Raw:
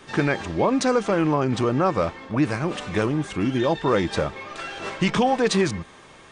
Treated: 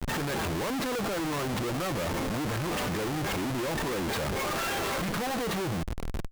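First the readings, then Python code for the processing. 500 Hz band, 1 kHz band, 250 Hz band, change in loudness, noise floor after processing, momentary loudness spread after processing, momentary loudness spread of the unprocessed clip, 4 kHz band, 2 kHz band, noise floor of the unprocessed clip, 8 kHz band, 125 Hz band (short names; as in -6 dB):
-9.0 dB, -7.0 dB, -9.0 dB, -7.5 dB, -32 dBFS, 1 LU, 10 LU, -2.5 dB, -4.5 dB, -48 dBFS, -0.5 dB, -6.5 dB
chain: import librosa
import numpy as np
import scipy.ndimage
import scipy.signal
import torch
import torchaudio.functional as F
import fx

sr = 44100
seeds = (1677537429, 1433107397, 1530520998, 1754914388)

y = fx.env_lowpass_down(x, sr, base_hz=1900.0, full_db=-17.0)
y = fx.schmitt(y, sr, flips_db=-39.5)
y = F.gain(torch.from_numpy(y), -7.0).numpy()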